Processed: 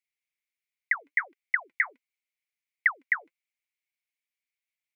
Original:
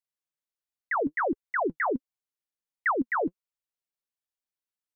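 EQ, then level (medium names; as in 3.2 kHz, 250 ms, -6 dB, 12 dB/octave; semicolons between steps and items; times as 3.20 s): resonant high-pass 2.2 kHz, resonance Q 7.9; -2.0 dB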